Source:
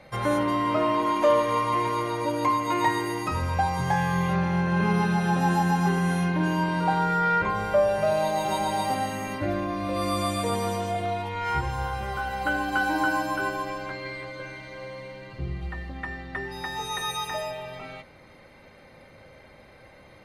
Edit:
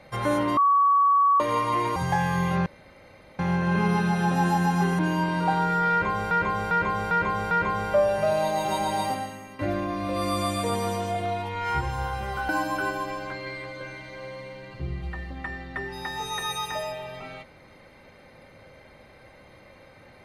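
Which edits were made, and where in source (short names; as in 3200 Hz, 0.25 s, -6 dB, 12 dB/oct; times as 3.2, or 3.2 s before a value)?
0.57–1.4 bleep 1130 Hz -16 dBFS
1.96–3.74 cut
4.44 insert room tone 0.73 s
6.04–6.39 cut
7.31–7.71 loop, 5 plays
8.85–9.39 fade out quadratic, to -12.5 dB
12.29–13.08 cut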